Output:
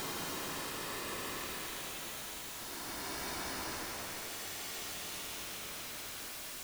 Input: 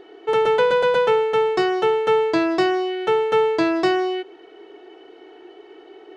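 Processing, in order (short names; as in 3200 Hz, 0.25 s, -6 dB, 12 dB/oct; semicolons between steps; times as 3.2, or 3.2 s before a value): varispeed -7%; crackle 410/s -34 dBFS; bit-crush 6-bit; Paulstretch 25×, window 0.10 s, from 5.48; gain +6 dB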